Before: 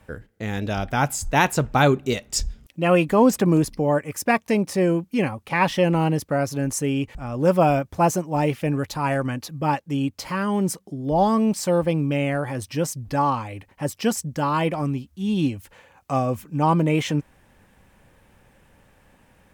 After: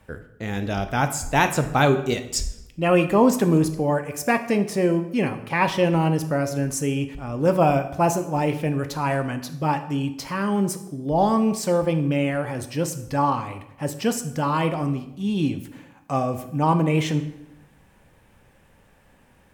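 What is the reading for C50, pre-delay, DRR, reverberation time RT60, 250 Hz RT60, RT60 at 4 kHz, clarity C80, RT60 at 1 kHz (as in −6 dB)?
11.5 dB, 12 ms, 8.0 dB, 0.85 s, 1.0 s, 0.65 s, 14.5 dB, 0.80 s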